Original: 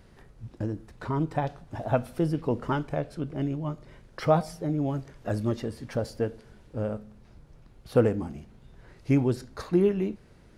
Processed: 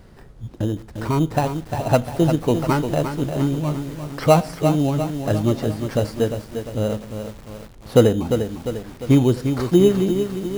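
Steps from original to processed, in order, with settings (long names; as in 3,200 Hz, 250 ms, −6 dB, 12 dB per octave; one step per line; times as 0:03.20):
in parallel at −4 dB: decimation without filtering 13×
on the sum: feedback echo at a low word length 350 ms, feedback 55%, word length 7 bits, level −7.5 dB
level +4 dB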